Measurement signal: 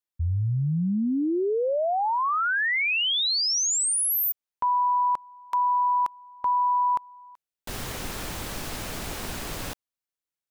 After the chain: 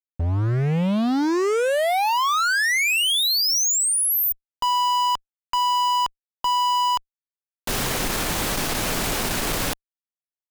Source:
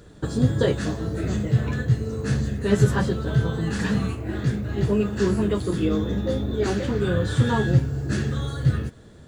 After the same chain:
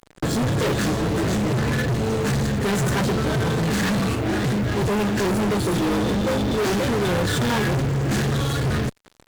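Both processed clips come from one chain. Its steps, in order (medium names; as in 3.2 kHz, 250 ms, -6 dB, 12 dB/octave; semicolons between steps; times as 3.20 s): peaking EQ 73 Hz -8.5 dB 0.87 oct; fuzz box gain 36 dB, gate -42 dBFS; trim -6.5 dB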